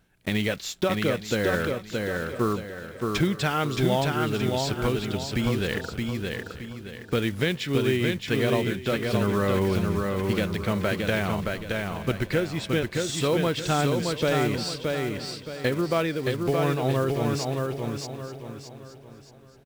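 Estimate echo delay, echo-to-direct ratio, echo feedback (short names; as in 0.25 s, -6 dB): 0.621 s, -2.5 dB, no steady repeat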